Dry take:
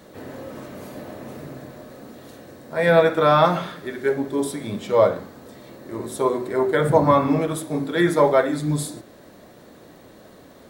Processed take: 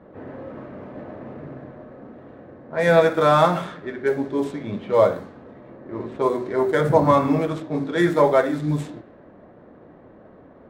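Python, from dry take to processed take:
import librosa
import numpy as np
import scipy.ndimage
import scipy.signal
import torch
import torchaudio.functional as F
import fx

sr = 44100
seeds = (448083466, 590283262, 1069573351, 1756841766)

y = scipy.signal.medfilt(x, 9)
y = fx.env_lowpass(y, sr, base_hz=1400.0, full_db=-17.0)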